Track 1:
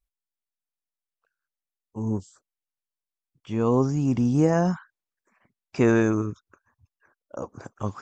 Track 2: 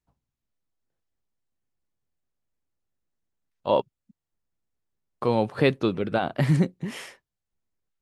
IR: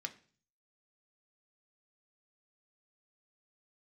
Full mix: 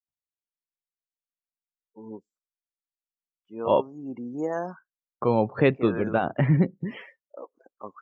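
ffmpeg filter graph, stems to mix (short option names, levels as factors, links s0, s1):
-filter_complex "[0:a]highpass=370,volume=0.562,asplit=2[s0][s1];[s1]volume=0.1[s2];[1:a]acrossover=split=3100[s3][s4];[s4]acompressor=threshold=0.00316:ratio=4:attack=1:release=60[s5];[s3][s5]amix=inputs=2:normalize=0,volume=1.06,asplit=3[s6][s7][s8];[s7]volume=0.0841[s9];[s8]apad=whole_len=353506[s10];[s0][s10]sidechaincompress=threshold=0.0501:ratio=4:attack=11:release=314[s11];[2:a]atrim=start_sample=2205[s12];[s2][s9]amix=inputs=2:normalize=0[s13];[s13][s12]afir=irnorm=-1:irlink=0[s14];[s11][s6][s14]amix=inputs=3:normalize=0,afftdn=nr=34:nf=-39"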